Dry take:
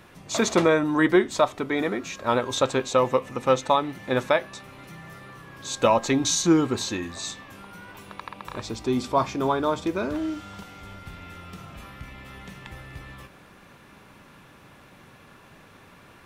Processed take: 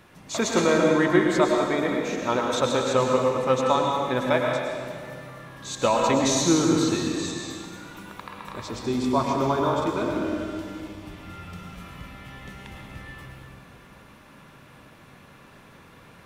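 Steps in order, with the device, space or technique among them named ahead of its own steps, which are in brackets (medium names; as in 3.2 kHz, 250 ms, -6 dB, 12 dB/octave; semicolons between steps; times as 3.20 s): stairwell (reverberation RT60 2.1 s, pre-delay 95 ms, DRR 0 dB); trim -2.5 dB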